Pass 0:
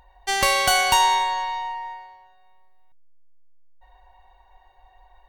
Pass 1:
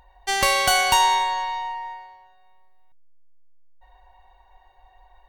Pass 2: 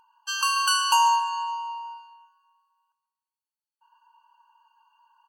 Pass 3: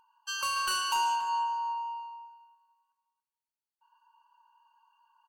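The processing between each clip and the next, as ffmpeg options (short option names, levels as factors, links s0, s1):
-af anull
-filter_complex "[0:a]asplit=2[s0][s1];[s1]adelay=138,lowpass=f=4900:p=1,volume=0.266,asplit=2[s2][s3];[s3]adelay=138,lowpass=f=4900:p=1,volume=0.49,asplit=2[s4][s5];[s5]adelay=138,lowpass=f=4900:p=1,volume=0.49,asplit=2[s6][s7];[s7]adelay=138,lowpass=f=4900:p=1,volume=0.49,asplit=2[s8][s9];[s9]adelay=138,lowpass=f=4900:p=1,volume=0.49[s10];[s0][s2][s4][s6][s8][s10]amix=inputs=6:normalize=0,afftfilt=real='re*eq(mod(floor(b*sr/1024/820),2),1)':imag='im*eq(mod(floor(b*sr/1024/820),2),1)':win_size=1024:overlap=0.75,volume=0.891"
-filter_complex "[0:a]asoftclip=type=tanh:threshold=0.106,asplit=2[s0][s1];[s1]adelay=281,lowpass=f=1200:p=1,volume=0.596,asplit=2[s2][s3];[s3]adelay=281,lowpass=f=1200:p=1,volume=0.27,asplit=2[s4][s5];[s5]adelay=281,lowpass=f=1200:p=1,volume=0.27,asplit=2[s6][s7];[s7]adelay=281,lowpass=f=1200:p=1,volume=0.27[s8];[s0][s2][s4][s6][s8]amix=inputs=5:normalize=0,volume=0.562"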